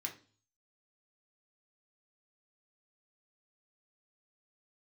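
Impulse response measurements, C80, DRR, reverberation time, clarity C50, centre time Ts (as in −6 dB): 17.5 dB, 0.5 dB, 0.40 s, 12.0 dB, 14 ms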